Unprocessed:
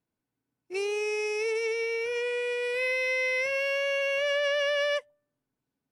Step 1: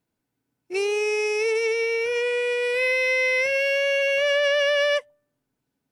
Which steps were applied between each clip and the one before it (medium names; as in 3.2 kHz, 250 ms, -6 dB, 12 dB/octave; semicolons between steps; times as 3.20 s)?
band-stop 1.1 kHz, Q 18; trim +6 dB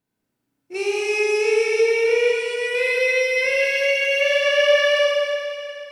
Schroeder reverb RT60 2.6 s, combs from 29 ms, DRR -5.5 dB; trim -3 dB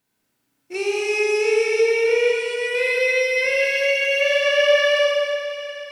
tape noise reduction on one side only encoder only